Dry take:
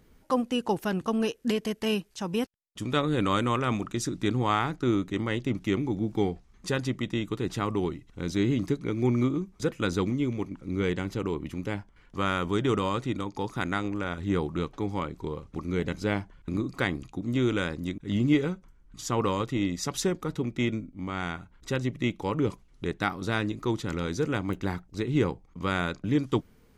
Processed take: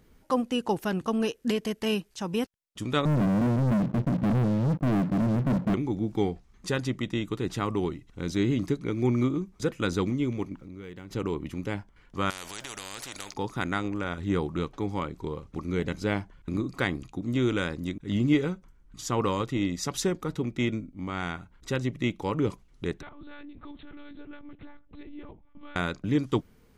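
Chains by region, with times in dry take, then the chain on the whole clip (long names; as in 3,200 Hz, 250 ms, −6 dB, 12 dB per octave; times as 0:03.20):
0:03.05–0:05.74: flat-topped band-pass 170 Hz, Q 1.3 + leveller curve on the samples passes 5
0:10.55–0:11.11: running median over 5 samples + downward compressor 4 to 1, threshold −41 dBFS
0:12.30–0:13.34: parametric band 120 Hz −10.5 dB 2.8 octaves + downward compressor, threshold −31 dBFS + every bin compressed towards the loudest bin 4 to 1
0:23.01–0:25.76: downward compressor 4 to 1, threshold −42 dBFS + one-pitch LPC vocoder at 8 kHz 290 Hz
whole clip: no processing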